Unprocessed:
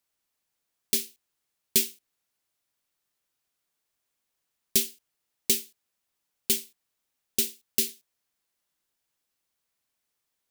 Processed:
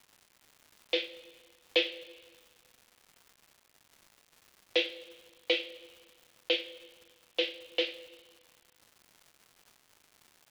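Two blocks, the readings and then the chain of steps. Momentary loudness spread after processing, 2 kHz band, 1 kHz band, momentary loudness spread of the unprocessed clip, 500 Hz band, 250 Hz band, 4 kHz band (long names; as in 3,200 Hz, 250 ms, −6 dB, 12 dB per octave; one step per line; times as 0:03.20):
21 LU, +7.0 dB, can't be measured, 9 LU, +8.0 dB, −3.0 dB, +1.5 dB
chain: single-sideband voice off tune +110 Hz 290–3,200 Hz
coupled-rooms reverb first 0.27 s, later 1.6 s, from −19 dB, DRR 0.5 dB
surface crackle 350 per second −52 dBFS
level +5.5 dB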